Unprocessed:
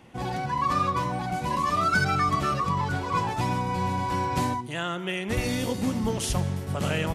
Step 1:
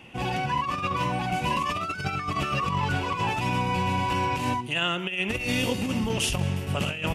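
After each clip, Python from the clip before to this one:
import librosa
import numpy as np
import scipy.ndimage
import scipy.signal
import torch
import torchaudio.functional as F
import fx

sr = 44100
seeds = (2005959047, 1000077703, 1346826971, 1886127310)

y = fx.peak_eq(x, sr, hz=2700.0, db=14.5, octaves=0.38)
y = fx.over_compress(y, sr, threshold_db=-26.0, ratio=-0.5)
y = fx.notch(y, sr, hz=4100.0, q=22.0)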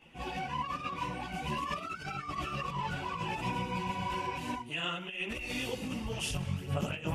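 y = fx.chorus_voices(x, sr, voices=6, hz=1.2, base_ms=16, depth_ms=3.6, mix_pct=65)
y = y * 10.0 ** (-6.5 / 20.0)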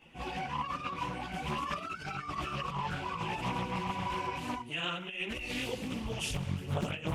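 y = fx.doppler_dist(x, sr, depth_ms=0.5)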